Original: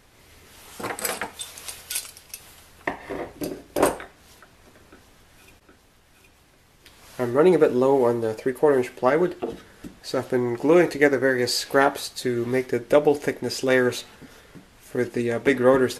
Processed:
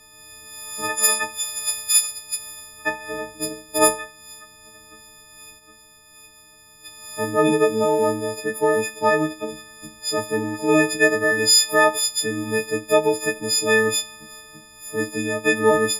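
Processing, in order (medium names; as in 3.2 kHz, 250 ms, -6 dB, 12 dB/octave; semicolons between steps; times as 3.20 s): partials quantised in pitch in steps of 6 st; de-hum 192.8 Hz, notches 39; trim -1 dB; MP3 128 kbps 48 kHz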